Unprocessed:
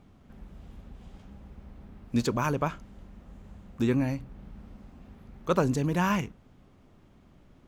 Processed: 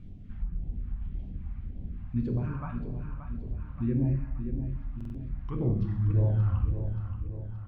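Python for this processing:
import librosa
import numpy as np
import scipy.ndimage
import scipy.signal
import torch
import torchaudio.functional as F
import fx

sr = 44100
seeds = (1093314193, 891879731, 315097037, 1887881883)

p1 = fx.tape_stop_end(x, sr, length_s=2.45)
p2 = fx.dereverb_blind(p1, sr, rt60_s=1.3)
p3 = fx.over_compress(p2, sr, threshold_db=-38.0, ratio=-1.0)
p4 = p2 + (p3 * 10.0 ** (-1.0 / 20.0))
p5 = fx.bass_treble(p4, sr, bass_db=5, treble_db=-12)
p6 = fx.rev_plate(p5, sr, seeds[0], rt60_s=1.2, hf_ratio=0.8, predelay_ms=0, drr_db=0.0)
p7 = fx.env_lowpass_down(p6, sr, base_hz=1400.0, full_db=-26.5)
p8 = fx.low_shelf(p7, sr, hz=88.0, db=9.0)
p9 = fx.echo_feedback(p8, sr, ms=577, feedback_pct=54, wet_db=-9)
p10 = fx.phaser_stages(p9, sr, stages=2, low_hz=410.0, high_hz=1300.0, hz=1.8, feedback_pct=20)
p11 = fx.buffer_glitch(p10, sr, at_s=(4.96,), block=2048, repeats=3)
y = p11 * 10.0 ** (-8.5 / 20.0)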